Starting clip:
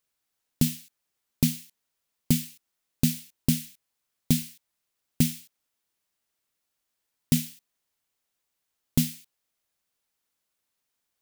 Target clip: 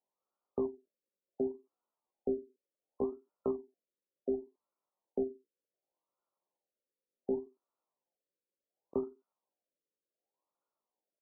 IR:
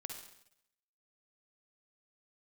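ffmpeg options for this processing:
-af "crystalizer=i=5:c=0,highpass=f=130:w=0.5412,highpass=f=130:w=1.3066,equalizer=f=160:t=q:w=4:g=-5,equalizer=f=340:t=q:w=4:g=5,equalizer=f=580:t=q:w=4:g=4,equalizer=f=1100:t=q:w=4:g=-6,equalizer=f=2100:t=q:w=4:g=-6,lowpass=f=8300:w=0.5412,lowpass=f=8300:w=1.3066,asoftclip=type=tanh:threshold=0.0708,asetrate=72056,aresample=44100,atempo=0.612027,afftfilt=real='re*lt(b*sr/1024,560*pow(1500/560,0.5+0.5*sin(2*PI*0.68*pts/sr)))':imag='im*lt(b*sr/1024,560*pow(1500/560,0.5+0.5*sin(2*PI*0.68*pts/sr)))':win_size=1024:overlap=0.75"

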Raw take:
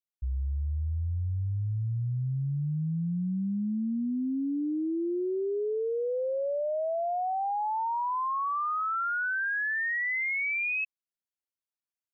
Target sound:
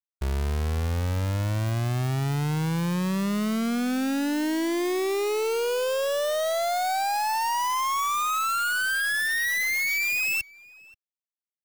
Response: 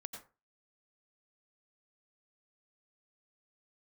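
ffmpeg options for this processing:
-filter_complex "[0:a]asetrate=45938,aresample=44100,acrusher=bits=6:dc=4:mix=0:aa=0.000001,asplit=2[s0][s1];[s1]adelay=530.6,volume=0.0891,highshelf=f=4000:g=-11.9[s2];[s0][s2]amix=inputs=2:normalize=0,volume=1.33"

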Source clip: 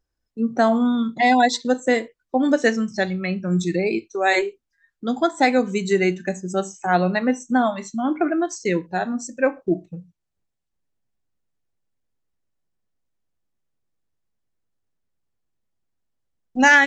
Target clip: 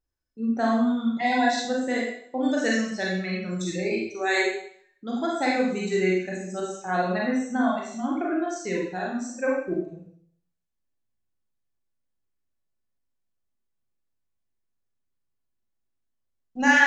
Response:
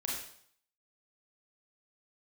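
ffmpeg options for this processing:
-filter_complex "[0:a]asettb=1/sr,asplit=3[s0][s1][s2];[s0]atrim=end=2.414[s3];[s1]atrim=start=2.41:end=4.47,asetpts=PTS-STARTPTS,afade=t=in:d=0.004:c=qsin,afade=t=out:st=2.056:d=0.004:c=qsin,highshelf=f=3500:g=7[s4];[s2]atrim=start=4.466[s5];[s3][s4]acrossfade=d=0.004:c1=hsin:c2=qsin[s6];[s6][s5]acrossfade=d=0.004:c1=qsin:c2=hsin[s7];[1:a]atrim=start_sample=2205[s8];[s7][s8]afir=irnorm=-1:irlink=0,volume=0.398"

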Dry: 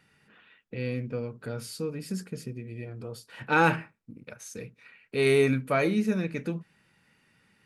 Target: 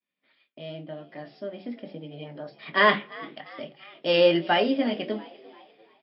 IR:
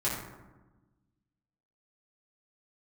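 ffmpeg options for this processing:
-filter_complex "[0:a]highpass=170,lowpass=4200,asplit=5[s0][s1][s2][s3][s4];[s1]adelay=437,afreqshift=46,volume=0.0891[s5];[s2]adelay=874,afreqshift=92,volume=0.0462[s6];[s3]adelay=1311,afreqshift=138,volume=0.024[s7];[s4]adelay=1748,afreqshift=184,volume=0.0126[s8];[s0][s5][s6][s7][s8]amix=inputs=5:normalize=0,agate=range=0.0224:threshold=0.002:ratio=3:detection=peak,bandreject=f=50:t=h:w=6,bandreject=f=100:t=h:w=6,bandreject=f=150:t=h:w=6,bandreject=f=200:t=h:w=6,bandreject=f=250:t=h:w=6,bandreject=f=300:t=h:w=6,bandreject=f=350:t=h:w=6,bandreject=f=400:t=h:w=6,bandreject=f=450:t=h:w=6,asplit=2[s9][s10];[s10]adelay=26,volume=0.237[s11];[s9][s11]amix=inputs=2:normalize=0,asplit=2[s12][s13];[1:a]atrim=start_sample=2205,asetrate=43218,aresample=44100[s14];[s13][s14]afir=irnorm=-1:irlink=0,volume=0.0266[s15];[s12][s15]amix=inputs=2:normalize=0,flanger=delay=3.7:depth=6.6:regen=-80:speed=0.65:shape=triangular,asetrate=56007,aresample=44100,dynaudnorm=f=340:g=11:m=2.82" -ar 12000 -c:a libmp3lame -b:a 40k

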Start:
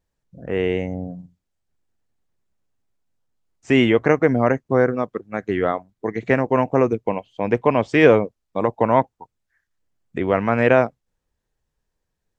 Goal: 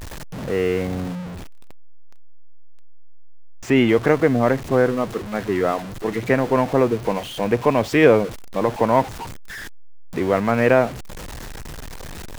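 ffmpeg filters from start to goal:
-af "aeval=exprs='val(0)+0.5*0.0531*sgn(val(0))':c=same,asetnsamples=n=441:p=0,asendcmd='1.15 highshelf g -10;3.89 highshelf g -4',highshelf=f=4900:g=-3,volume=0.891"

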